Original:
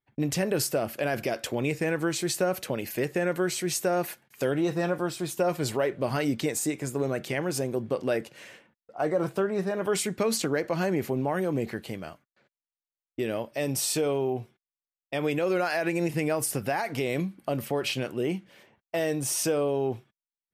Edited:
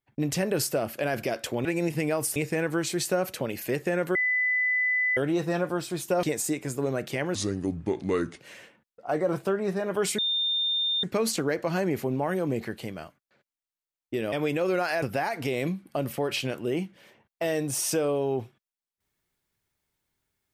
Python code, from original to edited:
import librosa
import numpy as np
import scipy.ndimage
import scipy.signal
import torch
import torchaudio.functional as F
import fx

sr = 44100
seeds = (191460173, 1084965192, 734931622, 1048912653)

y = fx.edit(x, sr, fx.bleep(start_s=3.44, length_s=1.02, hz=2000.0, db=-22.0),
    fx.cut(start_s=5.52, length_s=0.88),
    fx.speed_span(start_s=7.52, length_s=0.79, speed=0.75),
    fx.insert_tone(at_s=10.09, length_s=0.85, hz=3620.0, db=-23.5),
    fx.cut(start_s=13.38, length_s=1.76),
    fx.move(start_s=15.84, length_s=0.71, to_s=1.65), tone=tone)